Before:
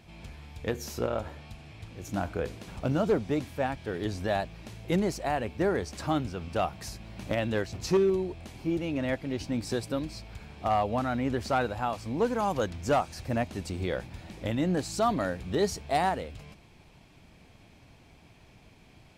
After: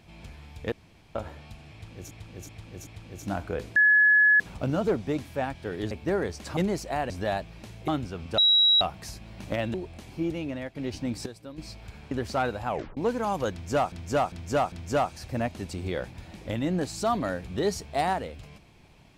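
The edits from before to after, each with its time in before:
0:00.72–0:01.15: fill with room tone
0:01.73–0:02.11: repeat, 4 plays
0:02.62: insert tone 1,700 Hz −15.5 dBFS 0.64 s
0:04.13–0:04.91: swap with 0:05.44–0:06.10
0:06.60: insert tone 3,870 Hz −16.5 dBFS 0.43 s
0:07.53–0:08.21: remove
0:08.83–0:09.22: fade out, to −11.5 dB
0:09.73–0:10.05: clip gain −11.5 dB
0:10.58–0:11.27: remove
0:11.84: tape stop 0.29 s
0:12.68–0:13.08: repeat, 4 plays

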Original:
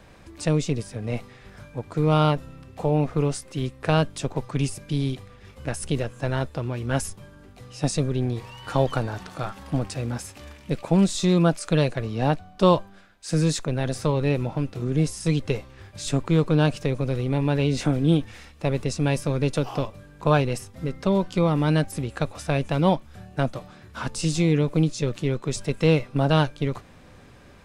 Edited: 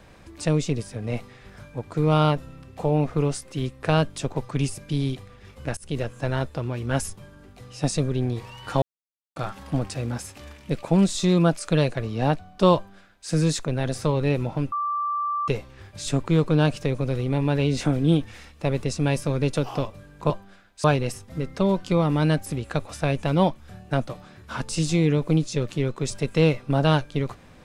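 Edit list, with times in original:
0:05.77–0:06.03: fade in, from −23 dB
0:08.82–0:09.36: silence
0:12.75–0:13.29: duplicate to 0:20.30
0:14.72–0:15.48: beep over 1,170 Hz −23 dBFS

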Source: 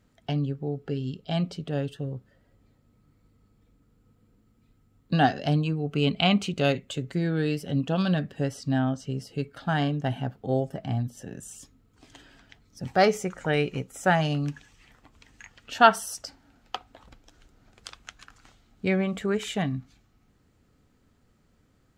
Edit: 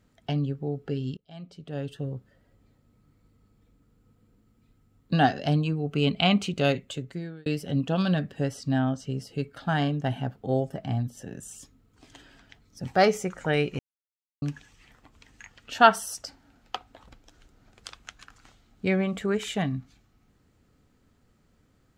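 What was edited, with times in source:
0:01.17–0:01.99: fade in quadratic, from −20.5 dB
0:06.81–0:07.46: fade out
0:13.79–0:14.42: silence

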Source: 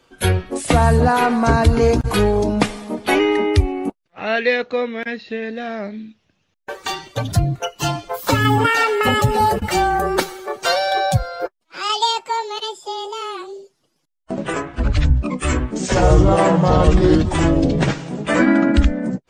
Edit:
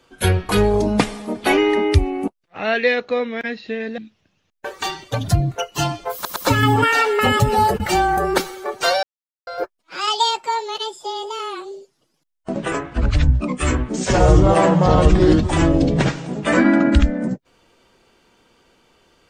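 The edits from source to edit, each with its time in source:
0:00.49–0:02.11: remove
0:05.60–0:06.02: remove
0:08.18: stutter 0.11 s, 3 plays
0:10.85–0:11.29: silence

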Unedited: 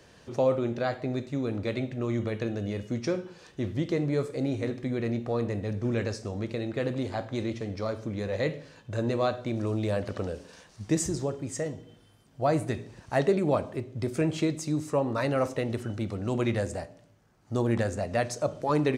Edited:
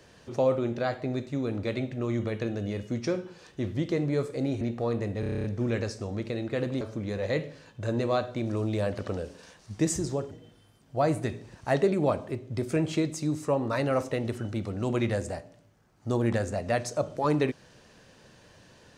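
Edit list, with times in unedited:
0:04.61–0:05.09: remove
0:05.68: stutter 0.03 s, 9 plays
0:07.05–0:07.91: remove
0:11.41–0:11.76: remove

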